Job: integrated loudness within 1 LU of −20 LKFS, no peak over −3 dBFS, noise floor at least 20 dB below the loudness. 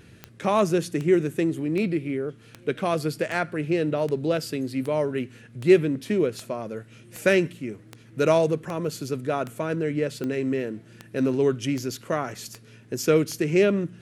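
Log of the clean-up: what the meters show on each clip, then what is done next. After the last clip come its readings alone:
number of clicks 18; integrated loudness −25.0 LKFS; sample peak −5.0 dBFS; target loudness −20.0 LKFS
→ click removal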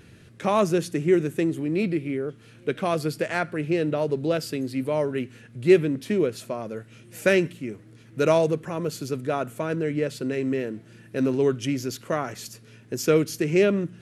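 number of clicks 0; integrated loudness −25.0 LKFS; sample peak −5.0 dBFS; target loudness −20.0 LKFS
→ level +5 dB
brickwall limiter −3 dBFS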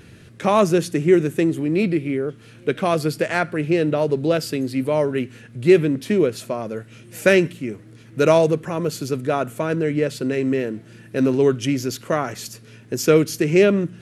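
integrated loudness −20.5 LKFS; sample peak −3.0 dBFS; background noise floor −46 dBFS

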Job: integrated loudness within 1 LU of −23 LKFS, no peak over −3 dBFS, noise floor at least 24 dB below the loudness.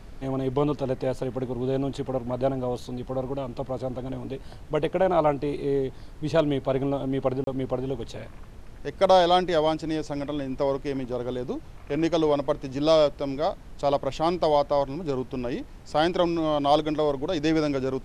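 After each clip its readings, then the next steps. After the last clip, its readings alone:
number of dropouts 1; longest dropout 32 ms; background noise floor −44 dBFS; target noise floor −50 dBFS; integrated loudness −26.0 LKFS; sample peak −9.0 dBFS; target loudness −23.0 LKFS
→ repair the gap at 0:07.44, 32 ms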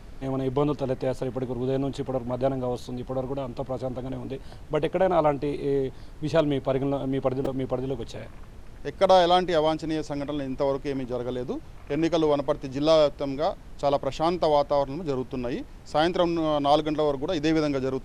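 number of dropouts 0; background noise floor −44 dBFS; target noise floor −50 dBFS
→ noise reduction from a noise print 6 dB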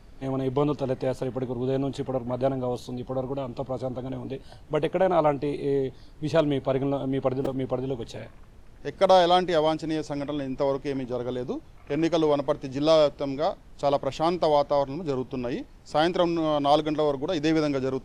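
background noise floor −49 dBFS; target noise floor −50 dBFS
→ noise reduction from a noise print 6 dB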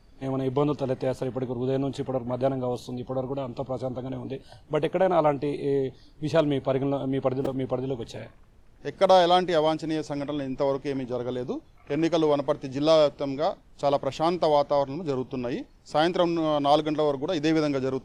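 background noise floor −54 dBFS; integrated loudness −26.0 LKFS; sample peak −9.0 dBFS; target loudness −23.0 LKFS
→ level +3 dB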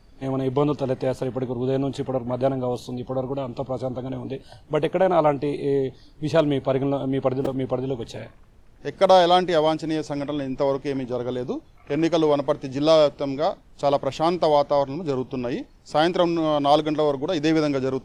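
integrated loudness −23.0 LKFS; sample peak −6.0 dBFS; background noise floor −51 dBFS

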